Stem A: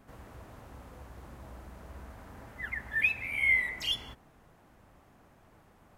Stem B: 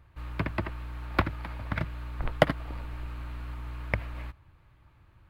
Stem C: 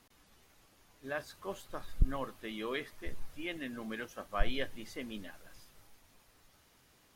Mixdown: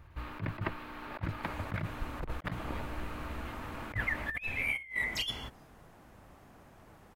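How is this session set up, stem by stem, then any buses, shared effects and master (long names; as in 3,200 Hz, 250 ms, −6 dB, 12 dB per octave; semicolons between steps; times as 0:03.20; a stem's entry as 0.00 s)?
−0.5 dB, 1.35 s, no send, no processing
0.0 dB, 0.00 s, no send, parametric band 8,500 Hz −5.5 dB 1.6 octaves; mains-hum notches 60/120/180 Hz
−18.0 dB, 0.00 s, no send, no processing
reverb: not used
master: compressor whose output falls as the input rises −34 dBFS, ratio −0.5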